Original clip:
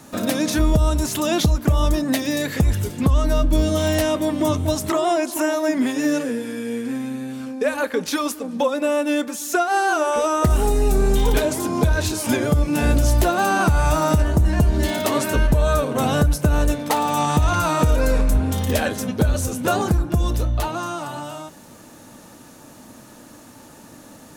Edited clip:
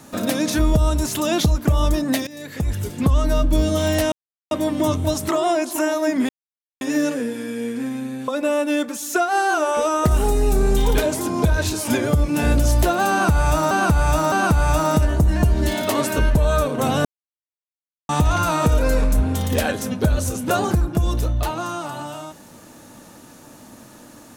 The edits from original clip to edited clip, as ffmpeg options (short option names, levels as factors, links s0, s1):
-filter_complex "[0:a]asplit=9[s0][s1][s2][s3][s4][s5][s6][s7][s8];[s0]atrim=end=2.27,asetpts=PTS-STARTPTS,afade=t=out:st=2.266:d=0.004:c=hsin:silence=0.0944061[s9];[s1]atrim=start=2.27:end=4.12,asetpts=PTS-STARTPTS,afade=t=in:d=0.74:silence=0.0944061,afade=t=out:st=1.846:d=0.004:c=hsin,apad=pad_dur=0.39[s10];[s2]atrim=start=4.12:end=5.9,asetpts=PTS-STARTPTS,afade=t=in:d=0.004:c=hsin,afade=t=out:st=1.776:d=0.004:c=hsin,apad=pad_dur=0.52[s11];[s3]atrim=start=5.9:end=7.372,asetpts=PTS-STARTPTS,afade=t=in:d=0.004:c=hsin[s12];[s4]atrim=start=8.668:end=14.102[s13];[s5]atrim=start=13.488:end=14.102[s14];[s6]atrim=start=13.488:end=16.22,asetpts=PTS-STARTPTS,afade=t=out:st=2.728:d=0.004:c=hsin[s15];[s7]atrim=start=16.22:end=17.26,asetpts=PTS-STARTPTS,volume=0[s16];[s8]atrim=start=17.26,asetpts=PTS-STARTPTS,afade=t=in:d=0.004:c=hsin[s17];[s9][s10][s11][s12]concat=n=4:v=0:a=1[s18];[s18][s13]acrossfade=d=0.004:c1=hsin:c2=hsin[s19];[s19][s14]acrossfade=d=0.004:c1=hsin:c2=hsin[s20];[s15][s16][s17]concat=n=3:v=0:a=1[s21];[s20][s21]acrossfade=d=0.004:c1=hsin:c2=hsin"